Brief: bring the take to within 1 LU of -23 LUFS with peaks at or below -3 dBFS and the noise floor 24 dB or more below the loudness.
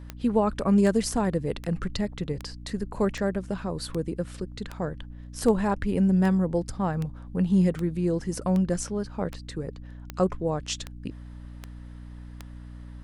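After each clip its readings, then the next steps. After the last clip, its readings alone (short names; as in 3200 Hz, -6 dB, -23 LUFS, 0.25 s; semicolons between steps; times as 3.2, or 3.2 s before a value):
clicks 17; hum 60 Hz; harmonics up to 300 Hz; hum level -39 dBFS; loudness -27.0 LUFS; peak -9.5 dBFS; loudness target -23.0 LUFS
-> de-click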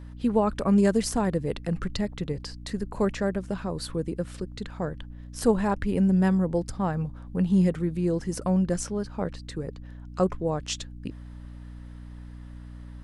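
clicks 0; hum 60 Hz; harmonics up to 300 Hz; hum level -39 dBFS
-> notches 60/120/180/240/300 Hz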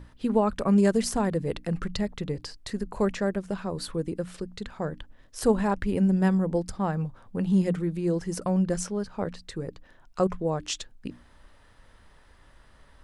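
hum none; loudness -28.0 LUFS; peak -10.0 dBFS; loudness target -23.0 LUFS
-> gain +5 dB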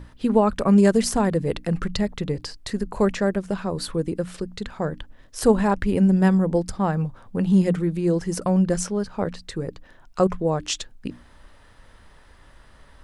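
loudness -23.0 LUFS; peak -5.0 dBFS; noise floor -51 dBFS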